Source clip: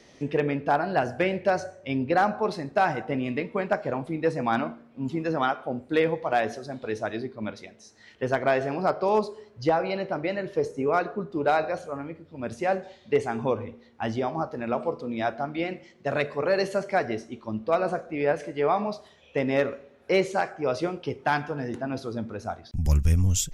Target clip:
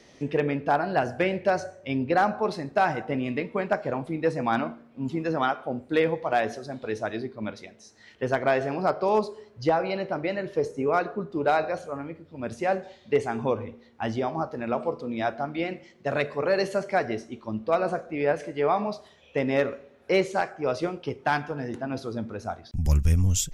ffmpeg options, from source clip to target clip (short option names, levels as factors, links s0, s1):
-filter_complex "[0:a]asettb=1/sr,asplit=3[s0][s1][s2];[s0]atrim=end=20.194[s3];[s1]atrim=start=20.19:end=21.91,asetpts=PTS-STARTPTS,afade=t=in:d=0.004:c=qsin,afade=t=out:st=1.716:d=0.004:c=qsin,aeval=exprs='0.251*(cos(1*acos(clip(val(0)/0.251,-1,1)))-cos(1*PI/2))+0.00501*(cos(7*acos(clip(val(0)/0.251,-1,1)))-cos(7*PI/2))':c=same[s4];[s2]atrim=start=21.906[s5];[s3][s4]acrossfade=d=0.004:c1=hsin:c2=qsin[s6];[s6][s5]acrossfade=d=0.004:c1=qsin:c2=hsin"